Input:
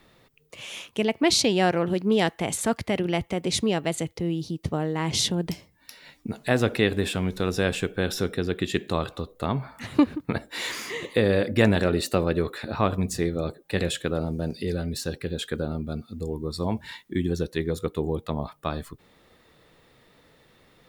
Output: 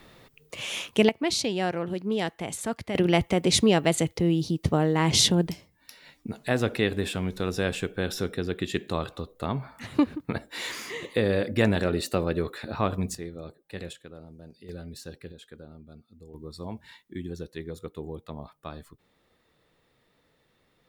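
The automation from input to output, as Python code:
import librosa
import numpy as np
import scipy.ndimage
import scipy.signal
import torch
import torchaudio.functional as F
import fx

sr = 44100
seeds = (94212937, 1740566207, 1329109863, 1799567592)

y = fx.gain(x, sr, db=fx.steps((0.0, 5.0), (1.09, -6.0), (2.95, 4.0), (5.48, -3.0), (13.15, -12.0), (13.93, -18.5), (14.69, -11.0), (15.32, -17.5), (16.34, -10.0)))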